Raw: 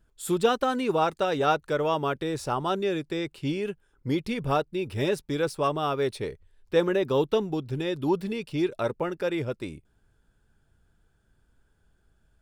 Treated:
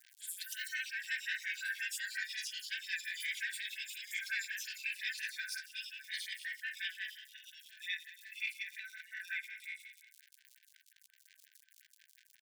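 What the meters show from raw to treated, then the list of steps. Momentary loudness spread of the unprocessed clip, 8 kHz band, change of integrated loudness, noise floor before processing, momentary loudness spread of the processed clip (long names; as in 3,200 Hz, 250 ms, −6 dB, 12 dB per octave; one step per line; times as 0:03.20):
7 LU, −1.0 dB, −12.0 dB, −68 dBFS, 9 LU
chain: peak hold with a decay on every bin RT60 0.79 s
noise reduction from a noise print of the clip's start 8 dB
comb filter 4.6 ms, depth 97%
compressor whose output falls as the input rises −25 dBFS, ratio −1
transient designer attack +7 dB, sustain +1 dB
brickwall limiter −17.5 dBFS, peak gain reduction 9 dB
transient designer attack −4 dB, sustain +9 dB
surface crackle 150 per second −34 dBFS
on a send: single-tap delay 261 ms −16.5 dB
on the sum: delay with pitch and tempo change per echo 231 ms, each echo +6 semitones, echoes 2
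linear-phase brick-wall high-pass 1,500 Hz
phaser with staggered stages 5.6 Hz
level −4 dB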